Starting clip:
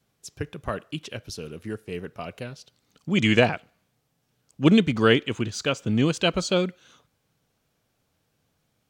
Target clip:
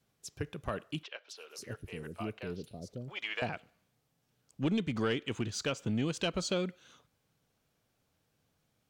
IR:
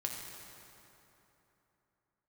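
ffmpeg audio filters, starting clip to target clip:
-filter_complex "[0:a]acompressor=threshold=-24dB:ratio=3,asoftclip=type=tanh:threshold=-17dB,asettb=1/sr,asplit=3[link_01][link_02][link_03];[link_01]atrim=end=1.034[link_04];[link_02]atrim=start=1.03:end=3.42,asetpts=PTS-STARTPTS,afade=type=in:duration=0.004:curve=qsin,afade=type=out:start_time=2.386:duration=0.004:curve=qsin,acrossover=split=560|4700[link_05][link_06][link_07];[link_07]adelay=260[link_08];[link_05]adelay=550[link_09];[link_09][link_06][link_08]amix=inputs=3:normalize=0,atrim=end_sample=105399[link_10];[link_03]atrim=start=3.416[link_11];[link_04][link_10]acrossfade=duration=0.004:curve1=hsin:curve2=qsin[link_12];[link_12][link_11]acrossfade=duration=0.004:curve1=qsin:curve2=hsin,volume=-4.5dB"

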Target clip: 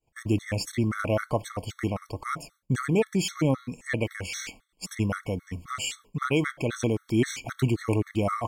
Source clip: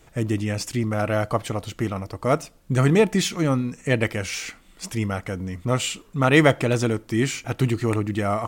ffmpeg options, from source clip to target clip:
ffmpeg -i in.wav -af "agate=range=-33dB:threshold=-39dB:ratio=3:detection=peak,alimiter=limit=-12.5dB:level=0:latency=1:release=453,afftfilt=real='re*gt(sin(2*PI*3.8*pts/sr)*(1-2*mod(floor(b*sr/1024/1100),2)),0)':imag='im*gt(sin(2*PI*3.8*pts/sr)*(1-2*mod(floor(b*sr/1024/1100),2)),0)':win_size=1024:overlap=0.75" out.wav

